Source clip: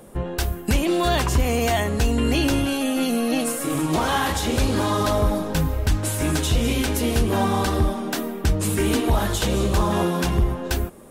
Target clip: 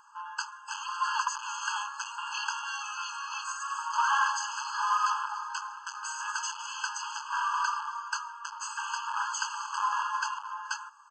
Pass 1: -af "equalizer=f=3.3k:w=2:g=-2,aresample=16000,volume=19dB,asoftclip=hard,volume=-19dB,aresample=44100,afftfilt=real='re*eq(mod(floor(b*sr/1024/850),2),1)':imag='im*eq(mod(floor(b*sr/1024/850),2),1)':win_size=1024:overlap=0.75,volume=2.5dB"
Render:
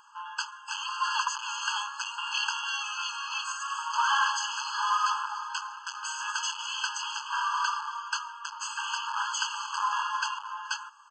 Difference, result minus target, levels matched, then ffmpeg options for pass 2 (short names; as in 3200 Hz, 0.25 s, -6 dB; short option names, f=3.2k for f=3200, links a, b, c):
4000 Hz band +5.0 dB
-af "equalizer=f=3.3k:w=2:g=-13.5,aresample=16000,volume=19dB,asoftclip=hard,volume=-19dB,aresample=44100,afftfilt=real='re*eq(mod(floor(b*sr/1024/850),2),1)':imag='im*eq(mod(floor(b*sr/1024/850),2),1)':win_size=1024:overlap=0.75,volume=2.5dB"